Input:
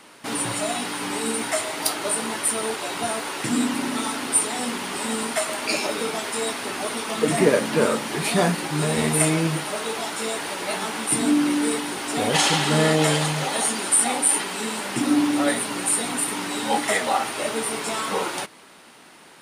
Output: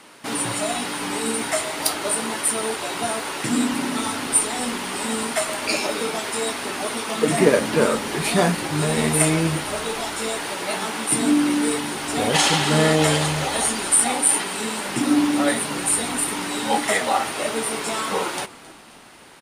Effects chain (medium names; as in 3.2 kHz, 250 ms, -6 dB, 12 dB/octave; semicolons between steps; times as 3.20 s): frequency-shifting echo 266 ms, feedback 56%, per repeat -72 Hz, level -20.5 dB; Chebyshev shaper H 3 -24 dB, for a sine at -4 dBFS; trim +3 dB